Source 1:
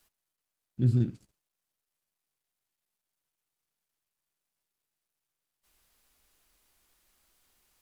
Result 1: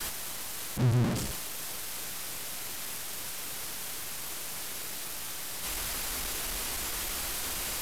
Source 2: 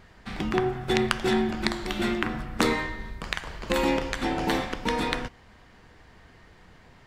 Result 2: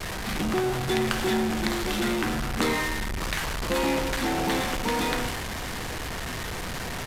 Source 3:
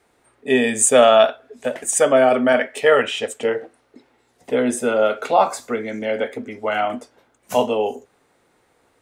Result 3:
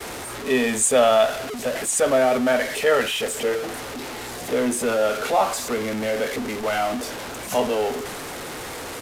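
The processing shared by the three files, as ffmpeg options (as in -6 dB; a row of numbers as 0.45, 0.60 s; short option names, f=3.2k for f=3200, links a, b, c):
-af "aeval=exprs='val(0)+0.5*0.126*sgn(val(0))':c=same,agate=range=-33dB:threshold=-23dB:ratio=3:detection=peak,aresample=32000,aresample=44100,volume=-6dB"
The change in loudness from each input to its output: -5.0, 0.0, -4.0 LU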